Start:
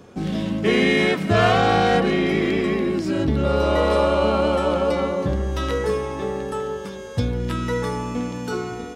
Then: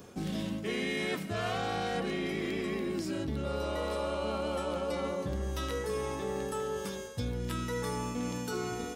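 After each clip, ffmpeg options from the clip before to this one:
-af "aemphasis=mode=production:type=50kf,areverse,acompressor=threshold=-26dB:ratio=6,areverse,volume=-5dB"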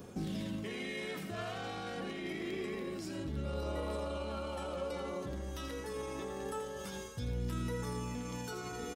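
-af "alimiter=level_in=6.5dB:limit=-24dB:level=0:latency=1:release=32,volume=-6.5dB,flanger=delay=0.1:depth=3.4:regen=67:speed=0.26:shape=sinusoidal,aecho=1:1:84:0.316,volume=2.5dB"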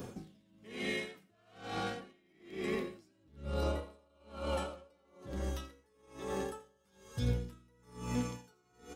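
-af "flanger=delay=7.8:depth=7.7:regen=73:speed=0.97:shape=sinusoidal,aeval=exprs='val(0)*pow(10,-36*(0.5-0.5*cos(2*PI*1.1*n/s))/20)':c=same,volume=10dB"

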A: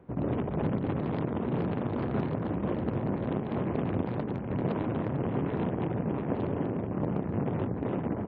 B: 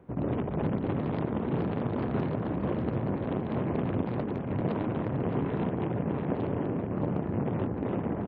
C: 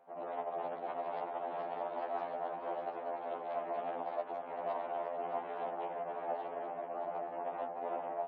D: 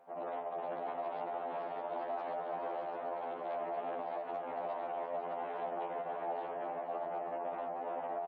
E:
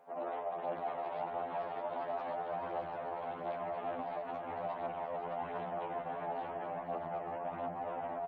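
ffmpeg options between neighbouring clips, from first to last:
-af "aecho=1:1:616:0.335"
-af "highpass=f=700:t=q:w=4.9,afftfilt=real='re*2*eq(mod(b,4),0)':imag='im*2*eq(mod(b,4),0)':win_size=2048:overlap=0.75,volume=-6dB"
-af "alimiter=level_in=10dB:limit=-24dB:level=0:latency=1:release=46,volume=-10dB,aecho=1:1:503:0.422,volume=2.5dB"
-af "flanger=delay=6.6:depth=7.6:regen=40:speed=0.48:shape=triangular,asubboost=boost=7:cutoff=150,volume=5.5dB"

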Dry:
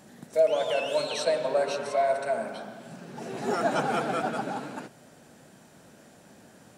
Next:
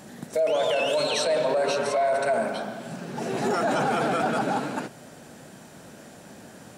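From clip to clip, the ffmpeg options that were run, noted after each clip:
-af "alimiter=limit=-24dB:level=0:latency=1:release=10,volume=7.5dB"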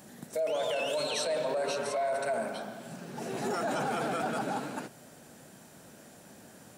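-af "highshelf=f=9.7k:g=10.5,volume=-7.5dB"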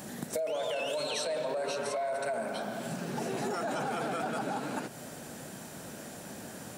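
-af "acompressor=threshold=-41dB:ratio=4,volume=8.5dB"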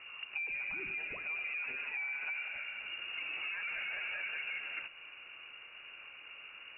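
-af "lowpass=f=2.6k:t=q:w=0.5098,lowpass=f=2.6k:t=q:w=0.6013,lowpass=f=2.6k:t=q:w=0.9,lowpass=f=2.6k:t=q:w=2.563,afreqshift=-3000,volume=-6dB"

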